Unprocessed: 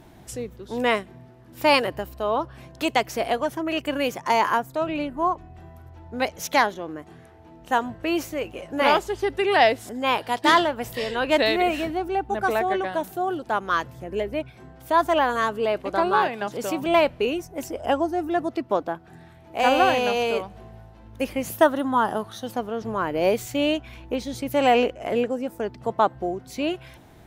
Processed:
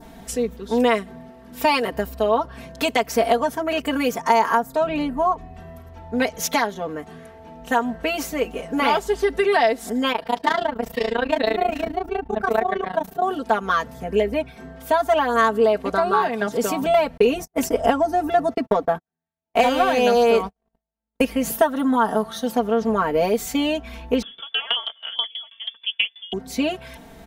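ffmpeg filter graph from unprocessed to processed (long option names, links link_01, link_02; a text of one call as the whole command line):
ffmpeg -i in.wav -filter_complex "[0:a]asettb=1/sr,asplit=3[link_01][link_02][link_03];[link_01]atrim=end=10.124[link_04];[link_02]atrim=start=10.12:end=13.22,asetpts=PTS-STARTPTS,afade=type=in:duration=0.004:curve=qsin,afade=type=out:start_time=3.096:duration=0.004:curve=qsin,equalizer=frequency=10000:width=0.56:gain=-9,tremolo=f=28:d=0.947[link_05];[link_03]atrim=start=13.216[link_06];[link_04][link_05]acrossfade=duration=0.004:curve1=hsin:curve2=qsin[link_07];[link_07][link_06]acrossfade=duration=0.004:curve1=qsin:curve2=hsin,asettb=1/sr,asplit=3[link_08][link_09][link_10];[link_08]atrim=end=17.174[link_11];[link_09]atrim=start=17.17:end=21.25,asetpts=PTS-STARTPTS,afade=type=in:duration=0.004:curve=qsin,afade=type=out:start_time=4.076:duration=0.004:curve=qsin,agate=range=-54dB:threshold=-38dB:ratio=16:release=100:detection=peak,acontrast=49[link_12];[link_10]atrim=start=21.246[link_13];[link_11][link_12]acrossfade=duration=0.004:curve1=hsin:curve2=qsin[link_14];[link_14][link_13]acrossfade=duration=0.004:curve1=qsin:curve2=hsin,asettb=1/sr,asplit=3[link_15][link_16][link_17];[link_15]atrim=end=24.224[link_18];[link_16]atrim=start=24.22:end=26.33,asetpts=PTS-STARTPTS,afade=type=in:duration=0.004:curve=qsin,afade=type=out:start_time=2.106:duration=0.004:curve=qsin,asplit=2[link_19][link_20];[link_20]adelay=13,volume=-11dB[link_21];[link_19][link_21]amix=inputs=2:normalize=0,atrim=end_sample=93051,lowpass=frequency=3100:width_type=q:width=0.5098,lowpass=frequency=3100:width_type=q:width=0.6013,lowpass=frequency=3100:width_type=q:width=0.9,lowpass=frequency=3100:width_type=q:width=2.563,afreqshift=-3600,aeval=exprs='val(0)*pow(10,-23*if(lt(mod(6.2*n/s,1),2*abs(6.2)/1000),1-mod(6.2*n/s,1)/(2*abs(6.2)/1000),(mod(6.2*n/s,1)-2*abs(6.2)/1000)/(1-2*abs(6.2)/1000))/20)':channel_layout=same[link_22];[link_17]atrim=start=26.326[link_23];[link_18][link_22]acrossfade=duration=0.004:curve1=hsin:curve2=qsin[link_24];[link_24][link_23]acrossfade=duration=0.004:curve1=qsin:curve2=hsin,acompressor=threshold=-22dB:ratio=5,aecho=1:1:4.4:1,adynamicequalizer=threshold=0.00631:dfrequency=2700:dqfactor=1.7:tfrequency=2700:tqfactor=1.7:attack=5:release=100:ratio=0.375:range=3:mode=cutabove:tftype=bell,volume=4dB" out.wav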